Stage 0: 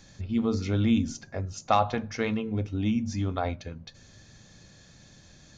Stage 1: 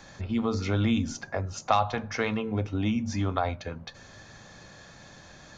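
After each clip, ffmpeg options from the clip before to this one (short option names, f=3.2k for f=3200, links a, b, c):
-filter_complex "[0:a]equalizer=f=1k:w=0.51:g=13,acrossover=split=150|3000[a][b][c];[b]acompressor=threshold=-31dB:ratio=2[d];[a][d][c]amix=inputs=3:normalize=0"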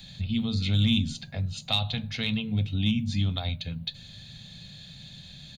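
-filter_complex "[0:a]firequalizer=gain_entry='entry(100,0);entry(150,6);entry(340,-17);entry(670,-14);entry(1100,-21);entry(2700,2);entry(3900,11);entry(5600,-12);entry(9800,10)':delay=0.05:min_phase=1,asplit=2[a][b];[b]volume=21dB,asoftclip=hard,volume=-21dB,volume=-6dB[c];[a][c]amix=inputs=2:normalize=0"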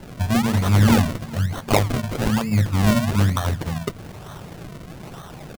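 -af "acrusher=samples=36:mix=1:aa=0.000001:lfo=1:lforange=36:lforate=1.1,aecho=1:1:387|774|1161:0.075|0.0375|0.0187,volume=8dB"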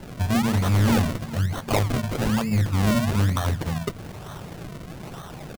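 -af "asoftclip=type=tanh:threshold=-15dB"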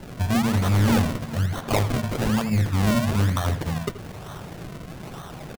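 -filter_complex "[0:a]asplit=2[a][b];[b]adelay=80,highpass=300,lowpass=3.4k,asoftclip=type=hard:threshold=-23.5dB,volume=-8dB[c];[a][c]amix=inputs=2:normalize=0"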